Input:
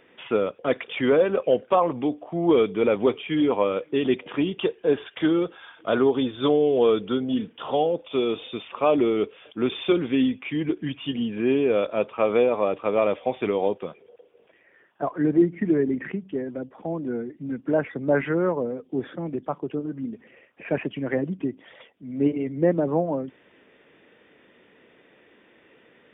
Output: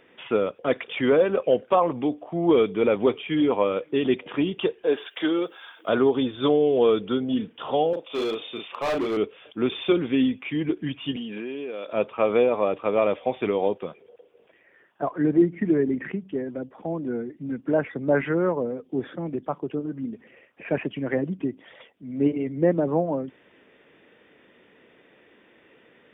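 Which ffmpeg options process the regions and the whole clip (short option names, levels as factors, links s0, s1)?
-filter_complex "[0:a]asettb=1/sr,asplit=3[s0][s1][s2];[s0]atrim=end=4.844[s3];[s1]atrim=start=4.84:end=5.89,asetpts=PTS-STARTPTS,afade=t=in:d=0.004:c=qsin,afade=t=out:st=1.046:d=0.004:c=qsin,highpass=300,aemphasis=mode=production:type=50fm[s4];[s2]atrim=start=5.886[s5];[s3][s4]acrossfade=d=0.004:c1=hsin:c2=qsin[s6];[s6][s5]acrossfade=d=0.004:c1=qsin:c2=hsin,asettb=1/sr,asplit=3[s7][s8][s9];[s7]atrim=end=7.934[s10];[s8]atrim=start=7.93:end=9.17,asetpts=PTS-STARTPTS,afade=t=in:d=0.004:c=qsin,afade=t=out:st=1.236:d=0.004:c=qsin,highpass=f=380:p=1,asplit=2[s11][s12];[s12]adelay=36,volume=0.668[s13];[s11][s13]amix=inputs=2:normalize=0,atrim=end_sample=54684,volume=13.3,asoftclip=hard,volume=0.075[s14];[s9]atrim=start=9.166[s15];[s10][s14]acrossfade=d=0.004:c1=hsin:c2=qsin[s16];[s16][s15]acrossfade=d=0.004:c1=qsin:c2=hsin,asettb=1/sr,asplit=3[s17][s18][s19];[s17]atrim=end=11.164[s20];[s18]atrim=start=11.16:end=11.93,asetpts=PTS-STARTPTS,afade=t=in:d=0.004:c=qsin,afade=t=out:st=0.766:d=0.004:c=qsin,highpass=210,highshelf=f=2400:g=8,acompressor=threshold=0.0355:ratio=12:attack=3.2:release=140:knee=1:detection=peak[s21];[s19]atrim=start=11.926[s22];[s20][s21]acrossfade=d=0.004:c1=hsin:c2=qsin[s23];[s23][s22]acrossfade=d=0.004:c1=qsin:c2=hsin"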